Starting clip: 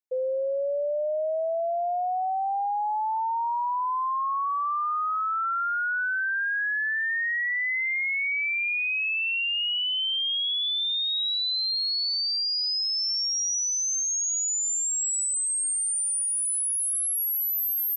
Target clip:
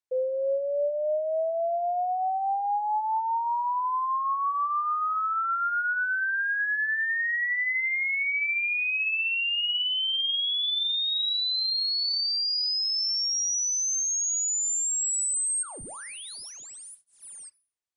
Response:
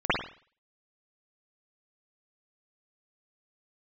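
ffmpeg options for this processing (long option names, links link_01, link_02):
-filter_complex "[0:a]asplit=3[link_01][link_02][link_03];[link_01]afade=type=out:start_time=15.62:duration=0.02[link_04];[link_02]aeval=exprs='0.0188*(abs(mod(val(0)/0.0188+3,4)-2)-1)':channel_layout=same,afade=type=in:start_time=15.62:duration=0.02,afade=type=out:start_time=17.48:duration=0.02[link_05];[link_03]afade=type=in:start_time=17.48:duration=0.02[link_06];[link_04][link_05][link_06]amix=inputs=3:normalize=0,asplit=2[link_07][link_08];[1:a]atrim=start_sample=2205,asetrate=70560,aresample=44100[link_09];[link_08][link_09]afir=irnorm=-1:irlink=0,volume=-26dB[link_10];[link_07][link_10]amix=inputs=2:normalize=0" -ar 22050 -c:a libmp3lame -b:a 80k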